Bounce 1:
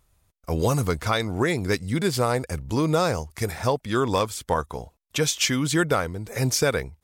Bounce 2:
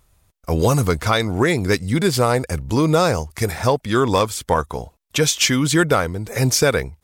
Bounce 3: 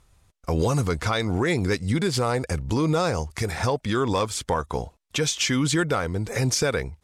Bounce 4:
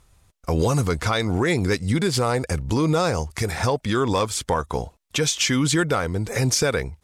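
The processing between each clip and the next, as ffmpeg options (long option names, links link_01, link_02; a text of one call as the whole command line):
ffmpeg -i in.wav -af "acontrast=52" out.wav
ffmpeg -i in.wav -af "lowpass=9000,bandreject=frequency=620:width=18,alimiter=limit=-14dB:level=0:latency=1:release=161" out.wav
ffmpeg -i in.wav -af "highshelf=frequency=9800:gain=4,volume=2dB" out.wav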